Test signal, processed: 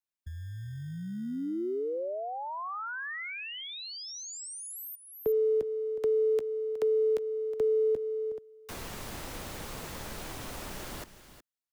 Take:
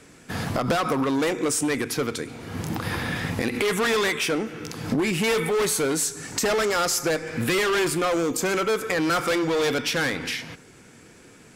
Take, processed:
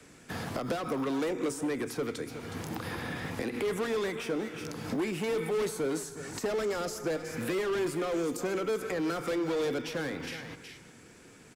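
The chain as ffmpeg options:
ffmpeg -i in.wav -filter_complex "[0:a]aecho=1:1:366:0.178,acrossover=split=270|540|1400[link_01][link_02][link_03][link_04];[link_01]acompressor=threshold=-36dB:ratio=4[link_05];[link_02]acompressor=threshold=-22dB:ratio=4[link_06];[link_03]acompressor=threshold=-38dB:ratio=4[link_07];[link_04]acompressor=threshold=-38dB:ratio=4[link_08];[link_05][link_06][link_07][link_08]amix=inputs=4:normalize=0,acrossover=split=150|910|2400[link_09][link_10][link_11][link_12];[link_09]acrusher=samples=26:mix=1:aa=0.000001[link_13];[link_13][link_10][link_11][link_12]amix=inputs=4:normalize=0,volume=-4.5dB" out.wav

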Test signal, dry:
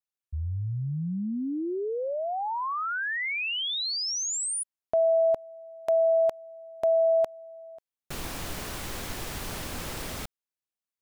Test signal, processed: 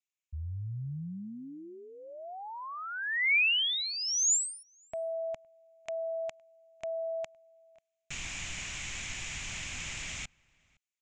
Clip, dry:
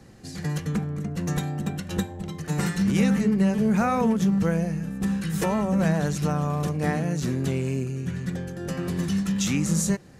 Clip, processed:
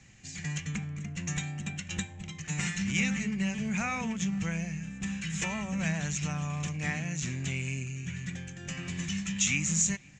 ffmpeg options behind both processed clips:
ffmpeg -i in.wav -filter_complex "[0:a]firequalizer=gain_entry='entry(140,0);entry(240,-6);entry(450,-13);entry(670,-6);entry(1400,-2);entry(2300,13);entry(4500,0);entry(7000,13);entry(11000,-29)':delay=0.05:min_phase=1,asplit=2[link_01][link_02];[link_02]adelay=513.1,volume=-27dB,highshelf=frequency=4000:gain=-11.5[link_03];[link_01][link_03]amix=inputs=2:normalize=0,volume=-6.5dB" out.wav

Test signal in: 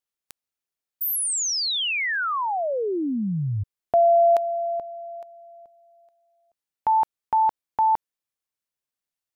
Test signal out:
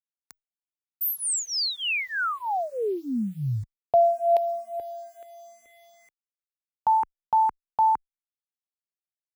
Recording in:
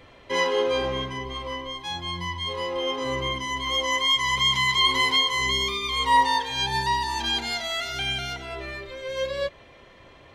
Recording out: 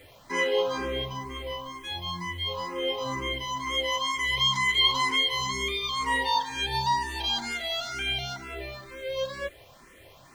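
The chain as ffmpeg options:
ffmpeg -i in.wav -filter_complex "[0:a]acrusher=bits=8:mix=0:aa=0.000001,asplit=2[link_01][link_02];[link_02]afreqshift=2.1[link_03];[link_01][link_03]amix=inputs=2:normalize=1" out.wav

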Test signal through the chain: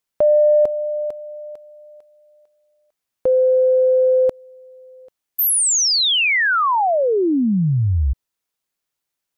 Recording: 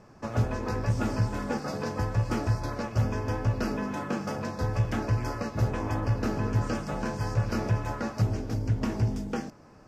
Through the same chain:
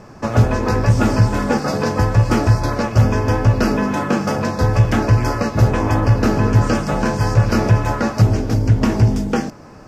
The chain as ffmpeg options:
ffmpeg -i in.wav -af "acontrast=86,volume=6dB" out.wav

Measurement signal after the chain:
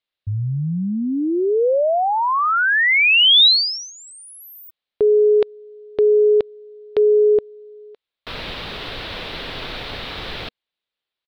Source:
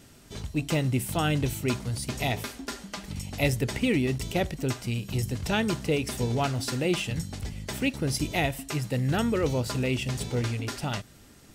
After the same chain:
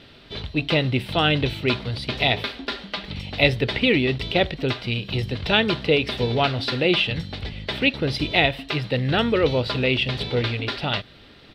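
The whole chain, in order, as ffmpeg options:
ffmpeg -i in.wav -af "firequalizer=gain_entry='entry(230,0);entry(480,6);entry(850,3);entry(3800,12);entry(6600,-19)':delay=0.05:min_phase=1,volume=2.5dB" out.wav

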